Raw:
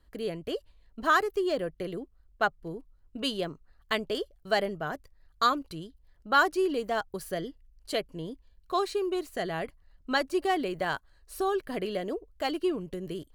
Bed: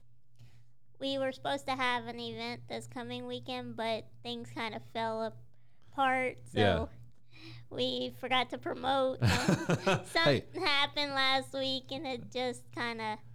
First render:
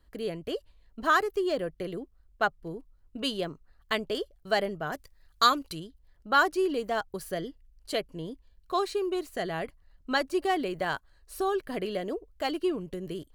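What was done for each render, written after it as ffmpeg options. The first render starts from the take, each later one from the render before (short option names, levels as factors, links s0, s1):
-filter_complex "[0:a]asettb=1/sr,asplit=3[s0][s1][s2];[s0]atrim=end=4.924[s3];[s1]atrim=start=4.92:end=5.8,asetpts=PTS-STARTPTS,afade=t=in:d=0.004:c=qsin,afade=t=out:st=0.876:d=0.004:c=qsin,highshelf=f=2000:g=8.5[s4];[s2]atrim=start=5.796[s5];[s3][s4]acrossfade=d=0.004:c1=hsin:c2=qsin[s6];[s6][s5]acrossfade=d=0.004:c1=qsin:c2=hsin"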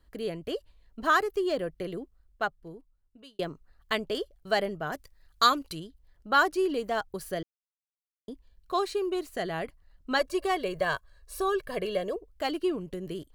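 -filter_complex "[0:a]asettb=1/sr,asplit=3[s0][s1][s2];[s0]atrim=end=10.194[s3];[s1]atrim=start=10.19:end=12.16,asetpts=PTS-STARTPTS,afade=t=in:d=0.004:c=qsin,afade=t=out:st=1.966:d=0.004:c=qsin,aecho=1:1:1.8:0.68,atrim=end_sample=86877[s4];[s2]atrim=start=12.156[s5];[s3][s4]acrossfade=d=0.004:c1=hsin:c2=qsin[s6];[s6][s5]acrossfade=d=0.004:c1=qsin:c2=hsin,asplit=4[s7][s8][s9][s10];[s7]atrim=end=3.39,asetpts=PTS-STARTPTS,afade=t=out:st=1.98:d=1.41[s11];[s8]atrim=start=3.39:end=7.43,asetpts=PTS-STARTPTS,afade=t=in:d=0.004:c=hsin,afade=t=out:st=4.036:d=0.004:c=hsin[s12];[s9]atrim=start=7.43:end=8.28,asetpts=PTS-STARTPTS,volume=0[s13];[s10]atrim=start=8.28,asetpts=PTS-STARTPTS,afade=t=in:d=0.004:c=hsin[s14];[s11][s12][s13][s14]concat=n=4:v=0:a=1"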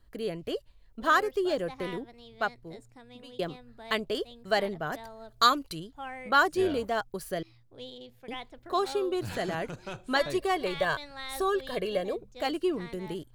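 -filter_complex "[1:a]volume=0.282[s0];[0:a][s0]amix=inputs=2:normalize=0"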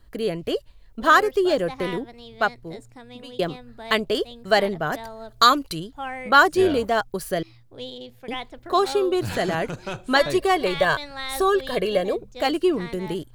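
-af "volume=2.51,alimiter=limit=0.794:level=0:latency=1"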